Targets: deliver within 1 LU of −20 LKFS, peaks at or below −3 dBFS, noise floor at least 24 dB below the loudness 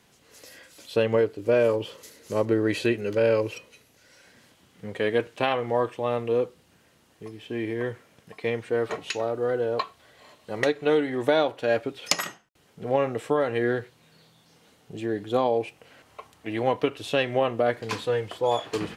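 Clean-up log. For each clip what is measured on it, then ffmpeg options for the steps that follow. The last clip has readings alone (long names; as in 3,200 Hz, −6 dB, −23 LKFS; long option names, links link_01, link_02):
integrated loudness −26.5 LKFS; sample peak −7.0 dBFS; target loudness −20.0 LKFS
→ -af "volume=6.5dB,alimiter=limit=-3dB:level=0:latency=1"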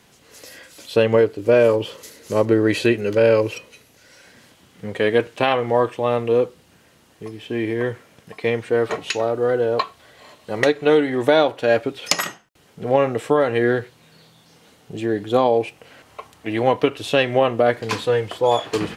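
integrated loudness −20.0 LKFS; sample peak −3.0 dBFS; background noise floor −54 dBFS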